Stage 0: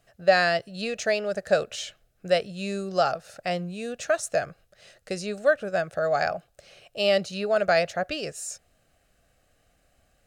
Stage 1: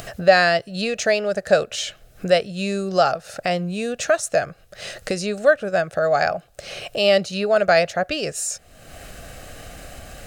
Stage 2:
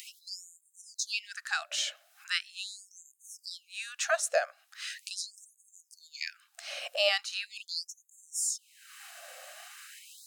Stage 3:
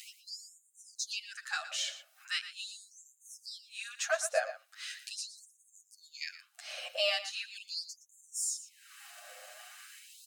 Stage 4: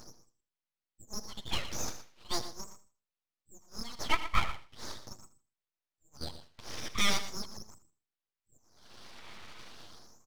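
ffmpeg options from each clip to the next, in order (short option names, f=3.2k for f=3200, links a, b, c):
-af "acompressor=mode=upward:threshold=-25dB:ratio=2.5,volume=5.5dB"
-af "asubboost=boost=6:cutoff=220,afftfilt=real='re*gte(b*sr/1024,500*pow(6400/500,0.5+0.5*sin(2*PI*0.4*pts/sr)))':imag='im*gte(b*sr/1024,500*pow(6400/500,0.5+0.5*sin(2*PI*0.4*pts/sr)))':win_size=1024:overlap=0.75,volume=-4.5dB"
-filter_complex "[0:a]acrossover=split=1500|1900|7600[a][b][c][d];[b]asoftclip=type=hard:threshold=-37.5dB[e];[a][e][c][d]amix=inputs=4:normalize=0,asplit=2[f][g];[g]adelay=116.6,volume=-12dB,highshelf=f=4k:g=-2.62[h];[f][h]amix=inputs=2:normalize=0,asplit=2[i][j];[j]adelay=8.3,afreqshift=0.36[k];[i][k]amix=inputs=2:normalize=1"
-af "aresample=8000,aresample=44100,aeval=exprs='abs(val(0))':c=same,aecho=1:1:79|158|237:0.158|0.0428|0.0116,volume=5.5dB"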